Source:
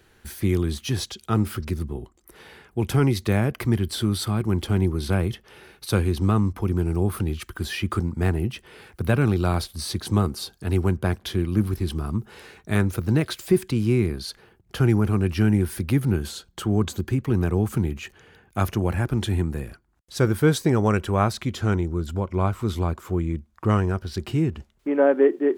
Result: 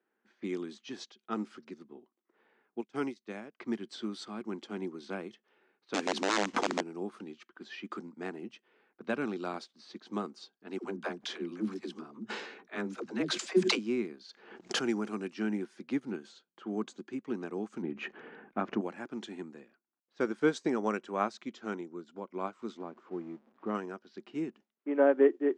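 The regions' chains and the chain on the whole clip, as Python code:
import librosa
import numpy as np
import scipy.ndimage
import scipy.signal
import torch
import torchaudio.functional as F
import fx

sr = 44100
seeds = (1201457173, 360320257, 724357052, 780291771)

y = fx.chain(x, sr, fx.high_shelf(hz=5600.0, db=8.0),
    fx.upward_expand(threshold_db=-28.0, expansion=2.5), at=(2.81, 3.6))
y = fx.chain(y, sr, fx.block_float(bits=5),
    fx.overflow_wrap(gain_db=13.5),
    fx.env_flatten(amount_pct=100), at=(5.94, 6.81))
y = fx.chain(y, sr, fx.dispersion(late='lows', ms=78.0, hz=340.0),
    fx.sustainer(db_per_s=39.0), at=(10.78, 13.79))
y = fx.chain(y, sr, fx.high_shelf(hz=5700.0, db=11.0),
    fx.pre_swell(db_per_s=56.0), at=(14.29, 15.34))
y = fx.chain(y, sr, fx.lowpass(hz=2000.0, slope=12),
    fx.low_shelf(hz=230.0, db=8.5),
    fx.env_flatten(amount_pct=50), at=(17.82, 18.81))
y = fx.chain(y, sr, fx.zero_step(step_db=-33.5),
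    fx.lowpass(hz=1000.0, slope=6), at=(22.77, 23.75))
y = fx.env_lowpass(y, sr, base_hz=1700.0, full_db=-18.5)
y = scipy.signal.sosfilt(scipy.signal.ellip(3, 1.0, 40, [230.0, 7000.0], 'bandpass', fs=sr, output='sos'), y)
y = fx.upward_expand(y, sr, threshold_db=-45.0, expansion=1.5)
y = y * librosa.db_to_amplitude(-4.5)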